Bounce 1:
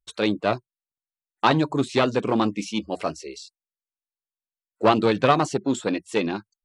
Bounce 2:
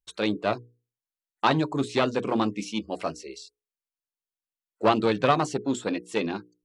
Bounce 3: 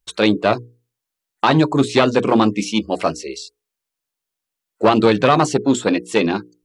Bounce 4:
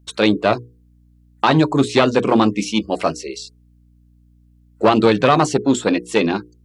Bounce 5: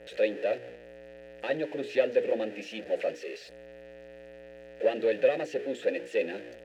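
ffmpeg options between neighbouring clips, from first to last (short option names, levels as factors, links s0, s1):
-af "bandreject=f=60:t=h:w=6,bandreject=f=120:t=h:w=6,bandreject=f=180:t=h:w=6,bandreject=f=240:t=h:w=6,bandreject=f=300:t=h:w=6,bandreject=f=360:t=h:w=6,bandreject=f=420:t=h:w=6,bandreject=f=480:t=h:w=6,volume=0.708"
-af "alimiter=level_in=3.98:limit=0.891:release=50:level=0:latency=1,volume=0.891"
-af "aeval=exprs='val(0)+0.00282*(sin(2*PI*60*n/s)+sin(2*PI*2*60*n/s)/2+sin(2*PI*3*60*n/s)/3+sin(2*PI*4*60*n/s)/4+sin(2*PI*5*60*n/s)/5)':c=same"
-filter_complex "[0:a]aeval=exprs='val(0)+0.5*0.126*sgn(val(0))':c=same,asplit=3[s0][s1][s2];[s0]bandpass=f=530:t=q:w=8,volume=1[s3];[s1]bandpass=f=1840:t=q:w=8,volume=0.501[s4];[s2]bandpass=f=2480:t=q:w=8,volume=0.355[s5];[s3][s4][s5]amix=inputs=3:normalize=0,volume=0.562"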